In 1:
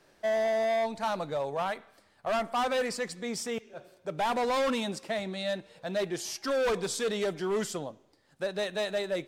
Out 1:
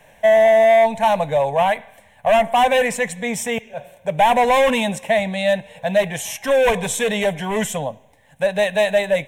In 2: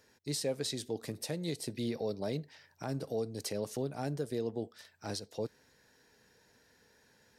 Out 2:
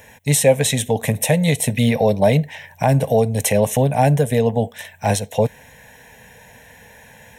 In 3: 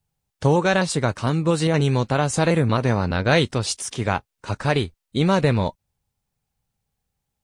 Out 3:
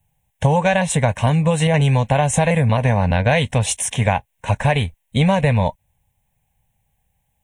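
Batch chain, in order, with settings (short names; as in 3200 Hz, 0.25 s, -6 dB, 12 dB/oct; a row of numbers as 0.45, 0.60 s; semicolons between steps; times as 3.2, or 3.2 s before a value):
fixed phaser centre 1300 Hz, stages 6; compressor, threshold -24 dBFS; match loudness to -18 LUFS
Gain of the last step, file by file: +16.0, +25.0, +11.5 dB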